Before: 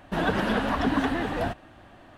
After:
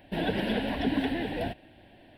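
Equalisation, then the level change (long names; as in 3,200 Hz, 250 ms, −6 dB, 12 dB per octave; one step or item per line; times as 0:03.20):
low-shelf EQ 170 Hz −6 dB
phaser with its sweep stopped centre 2,900 Hz, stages 4
0.0 dB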